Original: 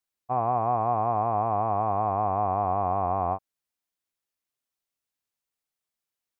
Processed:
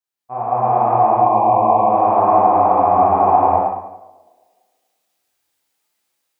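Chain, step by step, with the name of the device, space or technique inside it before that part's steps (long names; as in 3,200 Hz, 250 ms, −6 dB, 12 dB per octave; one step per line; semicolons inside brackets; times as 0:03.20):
0:00.94–0:01.90: elliptic band-stop filter 1,100–2,300 Hz
far laptop microphone (convolution reverb RT60 0.80 s, pre-delay 18 ms, DRR −3.5 dB; high-pass filter 160 Hz 6 dB per octave; automatic gain control gain up to 11 dB)
tape delay 108 ms, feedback 74%, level −20 dB, low-pass 1,400 Hz
reverb whose tail is shaped and stops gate 310 ms rising, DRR −5 dB
level −5 dB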